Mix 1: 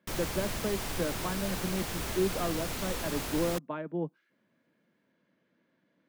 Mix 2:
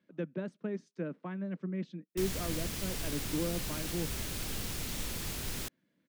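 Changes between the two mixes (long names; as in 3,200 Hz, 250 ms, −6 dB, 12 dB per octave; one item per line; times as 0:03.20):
background: entry +2.10 s
master: add parametric band 850 Hz −9.5 dB 2.3 octaves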